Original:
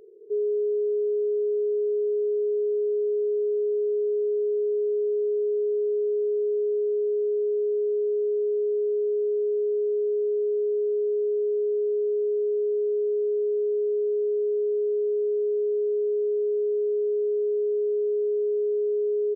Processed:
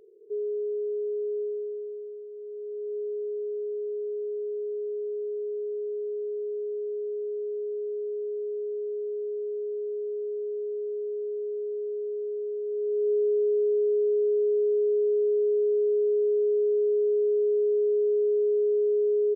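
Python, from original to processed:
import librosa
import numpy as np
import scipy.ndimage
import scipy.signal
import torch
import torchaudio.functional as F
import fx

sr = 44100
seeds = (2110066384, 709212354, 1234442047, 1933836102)

y = fx.gain(x, sr, db=fx.line((1.41, -5.0), (2.29, -17.0), (2.97, -7.0), (12.63, -7.0), (13.11, 1.0)))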